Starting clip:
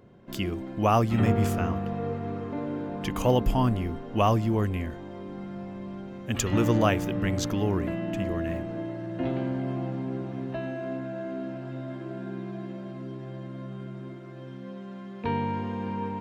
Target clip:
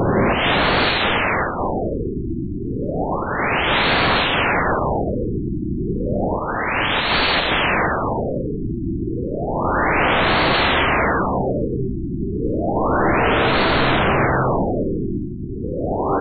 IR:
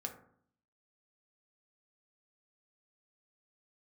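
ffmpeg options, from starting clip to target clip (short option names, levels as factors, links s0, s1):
-filter_complex "[0:a]aeval=exprs='val(0)+0.5*0.02*sgn(val(0))':c=same,asettb=1/sr,asplit=3[s0][s1][s2];[s0]atrim=end=6.364[s3];[s1]atrim=start=6.36:end=7.35,asetpts=PTS-STARTPTS,afade=t=in:d=0.004:c=qsin,afade=t=out:st=0.986:d=0.004:c=qsin,acontrast=32[s4];[s2]atrim=start=7.346[s5];[s3][s4]acrossfade=d=0.004:c1=hsin:c2=qsin[s6];[s6][s5]acrossfade=d=0.004:c1=qsin:c2=hsin,afftfilt=real='re*lt(hypot(re,im),0.1)':imag='im*lt(hypot(re,im),0.1)':win_size=1024:overlap=0.75,alimiter=level_in=1.58:limit=0.0631:level=0:latency=1:release=49,volume=0.631,asplit=2[s7][s8];[s8]aecho=0:1:43|57|67:0.531|0.282|0.316[s9];[s7][s9]amix=inputs=2:normalize=0,adynamicequalizer=threshold=0.00141:dfrequency=1300:dqfactor=5.6:tfrequency=1300:tqfactor=5.6:attack=5:release=100:ratio=0.375:range=2.5:mode=cutabove:tftype=bell,dynaudnorm=f=120:g=5:m=3.16,aeval=exprs='0.211*sin(PI/2*8.91*val(0)/0.211)':c=same,highshelf=f=12000:g=-3,asplit=2[s10][s11];[s11]aecho=0:1:85:0.376[s12];[s10][s12]amix=inputs=2:normalize=0,afftfilt=real='re*lt(b*sr/1024,370*pow(4600/370,0.5+0.5*sin(2*PI*0.31*pts/sr)))':imag='im*lt(b*sr/1024,370*pow(4600/370,0.5+0.5*sin(2*PI*0.31*pts/sr)))':win_size=1024:overlap=0.75"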